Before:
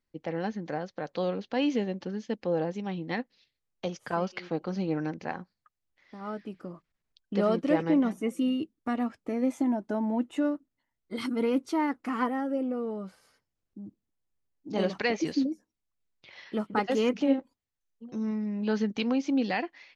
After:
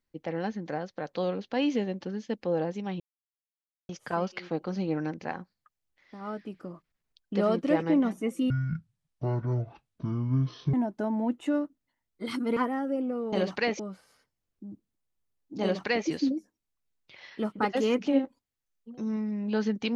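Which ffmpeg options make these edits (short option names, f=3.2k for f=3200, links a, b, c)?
-filter_complex "[0:a]asplit=8[a][b][c][d][e][f][g][h];[a]atrim=end=3,asetpts=PTS-STARTPTS,afade=t=out:st=2.996:d=0.004:c=hsin[i];[b]atrim=start=3:end=3.89,asetpts=PTS-STARTPTS,volume=0[j];[c]atrim=start=3.89:end=8.504,asetpts=PTS-STARTPTS,afade=t=in:d=0.004:c=hsin[k];[d]atrim=start=8.5:end=9.64,asetpts=PTS-STARTPTS,asetrate=22491,aresample=44100,atrim=end_sample=98576,asetpts=PTS-STARTPTS[l];[e]atrim=start=9.636:end=11.472[m];[f]atrim=start=12.178:end=12.942[n];[g]atrim=start=14.748:end=15.222[o];[h]atrim=start=12.938[p];[i][j][k]concat=n=3:v=0:a=1[q];[q][l]acrossfade=d=0.004:c1=hsin:c2=hsin[r];[r][m]acrossfade=d=0.004:c1=hsin:c2=hsin[s];[s][n]acrossfade=d=0.004:c1=hsin:c2=hsin[t];[t][o]acrossfade=d=0.004:c1=hsin:c2=hsin[u];[u][p]acrossfade=d=0.004:c1=hsin:c2=hsin"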